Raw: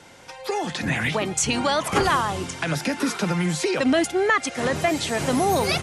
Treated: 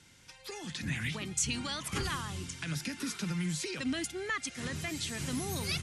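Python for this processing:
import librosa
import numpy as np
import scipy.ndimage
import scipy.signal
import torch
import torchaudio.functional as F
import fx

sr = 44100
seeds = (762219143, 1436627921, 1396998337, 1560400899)

y = fx.tone_stack(x, sr, knobs='6-0-2')
y = y * librosa.db_to_amplitude(7.0)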